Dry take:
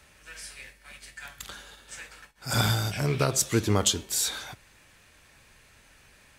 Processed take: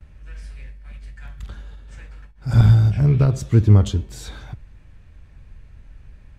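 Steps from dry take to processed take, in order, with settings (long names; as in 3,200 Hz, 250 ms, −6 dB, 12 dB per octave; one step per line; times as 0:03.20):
RIAA equalisation playback
noise gate with hold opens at −48 dBFS
low-shelf EQ 190 Hz +8.5 dB
level −3.5 dB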